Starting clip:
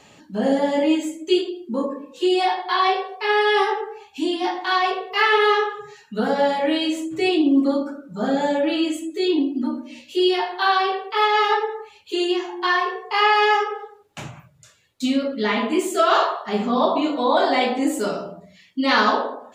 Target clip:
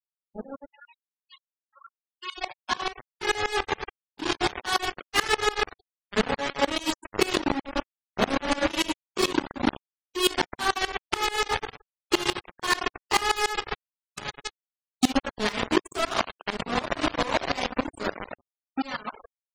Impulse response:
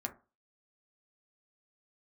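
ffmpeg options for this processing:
-filter_complex "[0:a]asplit=3[link_01][link_02][link_03];[link_01]afade=type=out:start_time=8.44:duration=0.02[link_04];[link_02]asplit=2[link_05][link_06];[link_06]adelay=20,volume=-3dB[link_07];[link_05][link_07]amix=inputs=2:normalize=0,afade=type=in:start_time=8.44:duration=0.02,afade=type=out:start_time=8.94:duration=0.02[link_08];[link_03]afade=type=in:start_time=8.94:duration=0.02[link_09];[link_04][link_08][link_09]amix=inputs=3:normalize=0,aecho=1:1:960:0.211,acompressor=threshold=-23dB:ratio=10,acrusher=bits=3:mix=0:aa=0.000001,asettb=1/sr,asplit=3[link_10][link_11][link_12];[link_10]atrim=end=0.684[link_13];[link_11]atrim=start=0.68:end=2.38,asetpts=PTS-STARTPTS,afade=type=in:duration=0.004:curve=qsin,afade=type=out:start_time=1.696:duration=0.004:curve=qsin,highpass=1200[link_14];[link_12]atrim=start=2.376[link_15];[link_13][link_14]acrossfade=duration=0.004:curve1=hsin:curve2=qsin[link_16];[link_16][link_15]acrossfade=duration=0.004:curve1=qsin:curve2=hsin,dynaudnorm=framelen=310:gausssize=17:maxgain=14dB,afftfilt=real='re*gte(hypot(re,im),0.141)':imag='im*gte(hypot(re,im),0.141)':win_size=1024:overlap=0.75,aeval=exprs='val(0)*pow(10,-21*if(lt(mod(-6.9*n/s,1),2*abs(-6.9)/1000),1-mod(-6.9*n/s,1)/(2*abs(-6.9)/1000),(mod(-6.9*n/s,1)-2*abs(-6.9)/1000)/(1-2*abs(-6.9)/1000))/20)':channel_layout=same,volume=-6.5dB"

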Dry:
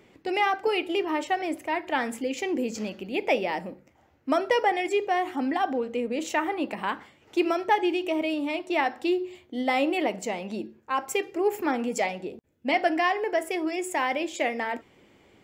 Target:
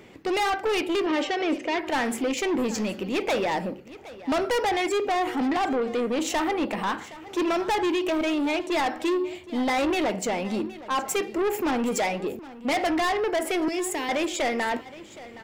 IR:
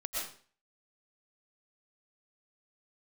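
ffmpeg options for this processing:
-filter_complex "[0:a]asettb=1/sr,asplit=3[link_01][link_02][link_03];[link_01]atrim=end=13.684[link_04];[link_02]atrim=start=13.68:end=14.09,asetpts=PTS-STARTPTS,afade=type=in:duration=0.004:curve=qsin,afade=type=out:start_time=0.406:duration=0.004:curve=qsin,acrossover=split=390|3000[link_05][link_06][link_07];[link_06]acompressor=threshold=-46dB:ratio=2.5[link_08];[link_05][link_08][link_07]amix=inputs=3:normalize=0[link_09];[link_03]atrim=start=14.086[link_10];[link_04][link_09]acrossfade=duration=0.004:curve1=hsin:curve2=qsin[link_11];[link_11][link_10]acrossfade=duration=0.004:curve1=qsin:curve2=hsin,asoftclip=type=tanh:threshold=-29dB,asettb=1/sr,asplit=3[link_12][link_13][link_14];[link_12]atrim=end=1.064[link_15];[link_13]atrim=start=1.06:end=1.79,asetpts=PTS-STARTPTS,afade=type=in:duration=0.004:curve=qsin,afade=type=out:start_time=0.726:duration=0.004:curve=qsin,highpass=160,equalizer=frequency=240:width_type=q:width=4:gain=7,equalizer=frequency=500:width_type=q:width=4:gain=8,equalizer=frequency=830:width_type=q:width=4:gain=-8,equalizer=frequency=2900:width_type=q:width=4:gain=4,lowpass=frequency=6200:width=0.5412,lowpass=frequency=6200:width=1.3066[link_16];[link_14]atrim=start=1.786[link_17];[link_15][link_16]acrossfade=duration=0.004:curve1=hsin:curve2=qsin[link_18];[link_18][link_17]acrossfade=duration=0.004:curve1=qsin:curve2=hsin,aecho=1:1:768:0.133,volume=7.5dB"

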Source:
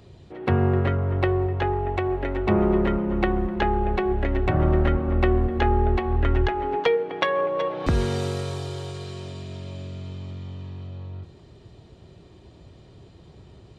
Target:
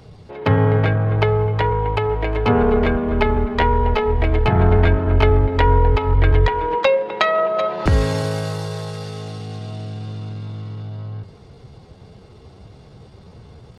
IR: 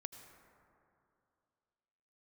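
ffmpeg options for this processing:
-af "highshelf=frequency=2000:gain=-5,asetrate=50951,aresample=44100,atempo=0.865537,equalizer=frequency=280:width=0.47:gain=-5,volume=8.5dB"

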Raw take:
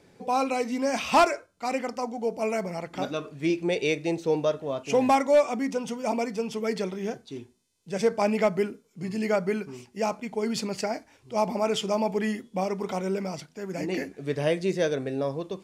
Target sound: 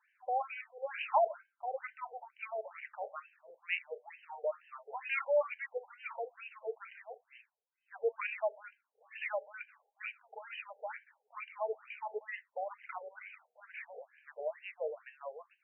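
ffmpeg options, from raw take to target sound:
ffmpeg -i in.wav -filter_complex "[0:a]asubboost=boost=6.5:cutoff=190,acrossover=split=430|1600[link_01][link_02][link_03];[link_03]dynaudnorm=framelen=140:gausssize=21:maxgain=9dB[link_04];[link_01][link_02][link_04]amix=inputs=3:normalize=0,afftfilt=real='re*between(b*sr/1024,580*pow(2200/580,0.5+0.5*sin(2*PI*2.2*pts/sr))/1.41,580*pow(2200/580,0.5+0.5*sin(2*PI*2.2*pts/sr))*1.41)':imag='im*between(b*sr/1024,580*pow(2200/580,0.5+0.5*sin(2*PI*2.2*pts/sr))/1.41,580*pow(2200/580,0.5+0.5*sin(2*PI*2.2*pts/sr))*1.41)':win_size=1024:overlap=0.75,volume=-6dB" out.wav

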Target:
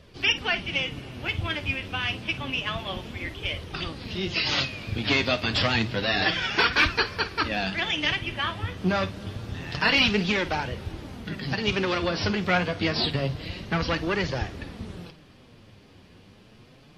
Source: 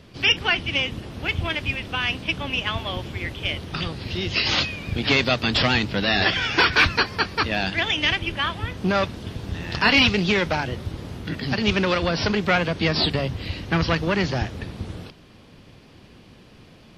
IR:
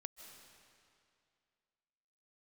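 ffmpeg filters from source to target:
-filter_complex "[0:a]flanger=delay=1.6:depth=9.8:regen=37:speed=0.28:shape=triangular,asplit=2[link_01][link_02];[1:a]atrim=start_sample=2205,adelay=52[link_03];[link_02][link_03]afir=irnorm=-1:irlink=0,volume=-9.5dB[link_04];[link_01][link_04]amix=inputs=2:normalize=0"

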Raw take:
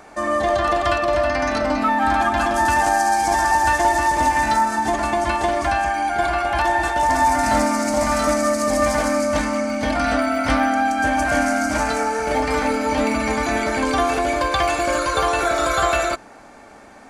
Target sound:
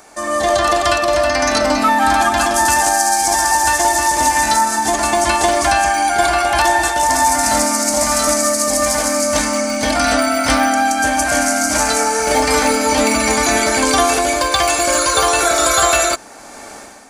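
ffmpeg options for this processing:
ffmpeg -i in.wav -af "bass=frequency=250:gain=-4,treble=frequency=4000:gain=13,dynaudnorm=framelen=150:gausssize=5:maxgain=11.5dB,volume=-1dB" out.wav

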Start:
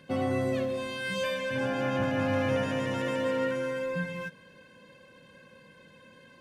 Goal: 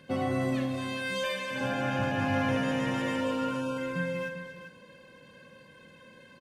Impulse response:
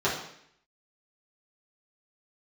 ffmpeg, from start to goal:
-filter_complex "[0:a]asettb=1/sr,asplit=3[link_01][link_02][link_03];[link_01]atrim=end=0.754[link_04];[link_02]atrim=start=0.75:end=1.61,asetpts=PTS-STARTPTS,afade=type=in:duration=0.004:curve=qsin,afade=type=out:start_time=0.856:duration=0.004:curve=qsin,equalizer=frequency=79:width=0.61:gain=-13.5[link_05];[link_03]atrim=start=1.606[link_06];[link_04][link_05]acrossfade=duration=0.004:curve1=hsin:curve2=qsin[link_07];[link_07][link_06]acrossfade=duration=0.004:curve1=qsin:curve2=hsin,asplit=3[link_08][link_09][link_10];[link_08]afade=type=out:start_time=3.2:duration=0.02[link_11];[link_09]asuperstop=centerf=1900:order=20:qfactor=2.4,afade=type=in:start_time=3.2:duration=0.02,afade=type=out:start_time=3.77:duration=0.02[link_12];[link_10]afade=type=in:start_time=3.77:duration=0.02[link_13];[link_11][link_12][link_13]amix=inputs=3:normalize=0,asplit=2[link_14][link_15];[link_15]aecho=0:1:47|240|400:0.355|0.282|0.299[link_16];[link_14][link_16]amix=inputs=2:normalize=0"

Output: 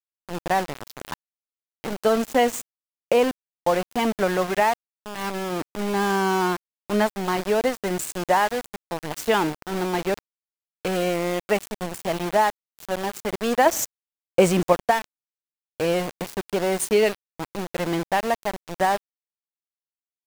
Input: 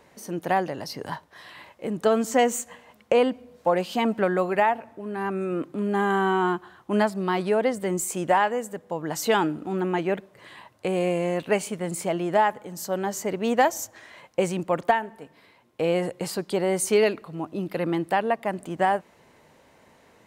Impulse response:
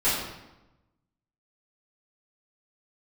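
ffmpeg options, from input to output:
-filter_complex "[0:a]asettb=1/sr,asplit=3[link_01][link_02][link_03];[link_01]atrim=end=13.664[link_04];[link_02]atrim=start=13.66:end=14.73,asetpts=PTS-STARTPTS,afade=type=in:duration=0.004:curve=qsin,afade=type=out:start_time=1.066:duration=0.004:curve=qsin,acontrast=77[link_05];[link_03]atrim=start=14.726[link_06];[link_04][link_05]acrossfade=duration=0.004:curve1=hsin:curve2=qsin[link_07];[link_07][link_06]acrossfade=duration=0.004:curve1=qsin:curve2=hsin,aeval=exprs='val(0)*gte(abs(val(0)),0.0473)':channel_layout=same,volume=1dB"

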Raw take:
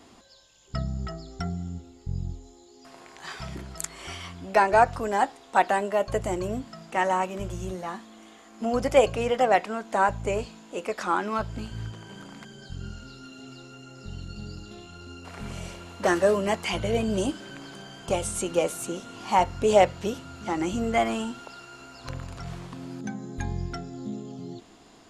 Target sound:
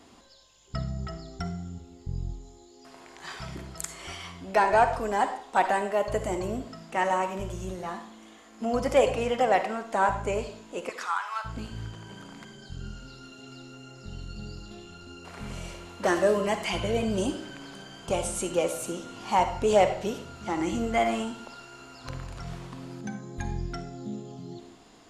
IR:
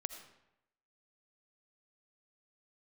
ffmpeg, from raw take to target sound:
-filter_complex "[0:a]asettb=1/sr,asplit=3[link_01][link_02][link_03];[link_01]atrim=end=10.894[link_04];[link_02]atrim=start=10.89:end=11.45,asetpts=PTS-STARTPTS,afade=type=in:duration=0.004:curve=qsin,afade=type=out:start_time=0.556:duration=0.004:curve=qsin,highpass=frequency=950:width=0.5412,highpass=frequency=950:width=1.3066[link_05];[link_03]atrim=start=11.446[link_06];[link_04][link_05]acrossfade=duration=0.004:curve1=hsin:curve2=qsin[link_07];[link_07][link_06]acrossfade=duration=0.004:curve1=qsin:curve2=hsin,asoftclip=type=tanh:threshold=-7.5dB[link_08];[1:a]atrim=start_sample=2205,asetrate=70560,aresample=44100[link_09];[link_08][link_09]afir=irnorm=-1:irlink=0,volume=4.5dB"

